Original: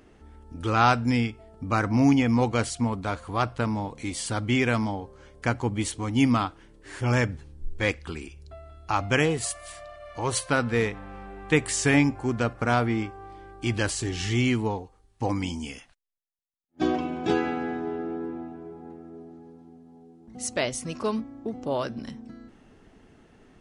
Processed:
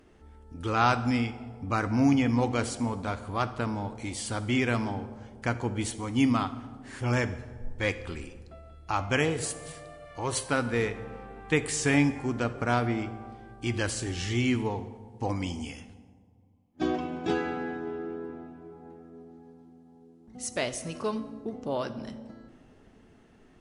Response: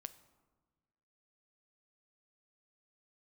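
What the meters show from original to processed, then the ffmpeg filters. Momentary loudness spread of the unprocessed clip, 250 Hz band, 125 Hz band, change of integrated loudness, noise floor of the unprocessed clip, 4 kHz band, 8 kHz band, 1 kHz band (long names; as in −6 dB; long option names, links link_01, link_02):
20 LU, −3.0 dB, −3.5 dB, −3.0 dB, −58 dBFS, −3.0 dB, −3.0 dB, −3.0 dB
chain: -filter_complex "[1:a]atrim=start_sample=2205,asetrate=29988,aresample=44100[link_01];[0:a][link_01]afir=irnorm=-1:irlink=0"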